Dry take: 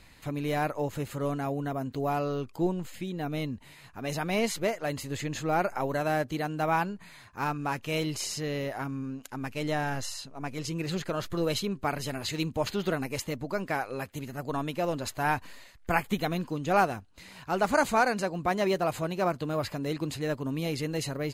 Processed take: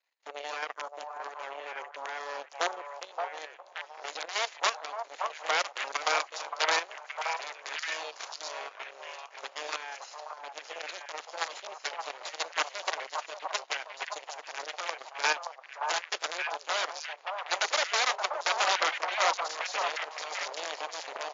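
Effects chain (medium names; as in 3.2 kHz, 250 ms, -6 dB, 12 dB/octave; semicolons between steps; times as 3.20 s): in parallel at -3.5 dB: crossover distortion -43 dBFS; on the sum: echo that smears into a reverb 921 ms, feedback 63%, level -14.5 dB; Chebyshev shaper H 5 -45 dB, 7 -16 dB, 8 -10 dB, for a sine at -3 dBFS; transient shaper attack +3 dB, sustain -1 dB; integer overflow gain 12 dB; level held to a coarse grid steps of 11 dB; random-step tremolo; high-pass 520 Hz 24 dB/octave; repeats whose band climbs or falls 573 ms, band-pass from 840 Hz, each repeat 1.4 oct, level -1 dB; MP3 56 kbps 16 kHz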